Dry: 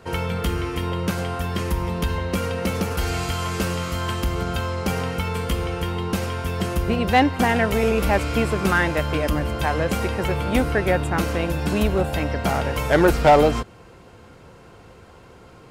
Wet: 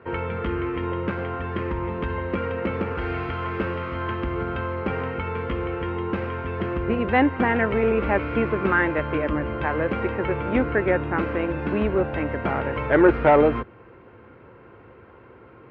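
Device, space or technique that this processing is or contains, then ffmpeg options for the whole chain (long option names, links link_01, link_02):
bass cabinet: -af "highpass=73,equalizer=frequency=77:width_type=q:width=4:gain=-5,equalizer=frequency=170:width_type=q:width=4:gain=-9,equalizer=frequency=350:width_type=q:width=4:gain=3,equalizer=frequency=720:width_type=q:width=4:gain=-6,lowpass=frequency=2300:width=0.5412,lowpass=frequency=2300:width=1.3066"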